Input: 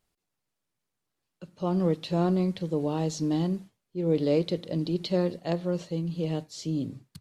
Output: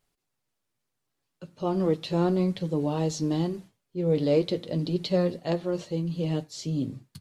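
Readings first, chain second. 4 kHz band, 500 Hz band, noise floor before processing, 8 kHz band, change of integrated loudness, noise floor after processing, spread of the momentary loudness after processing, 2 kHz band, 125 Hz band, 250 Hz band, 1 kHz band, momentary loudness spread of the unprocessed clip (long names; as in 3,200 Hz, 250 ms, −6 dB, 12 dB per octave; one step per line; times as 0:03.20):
+1.5 dB, +1.5 dB, −83 dBFS, +1.5 dB, +1.0 dB, −81 dBFS, 7 LU, +1.5 dB, +1.0 dB, +0.5 dB, +1.0 dB, 7 LU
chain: flanger 0.78 Hz, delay 7 ms, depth 1.8 ms, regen −45%
level +5.5 dB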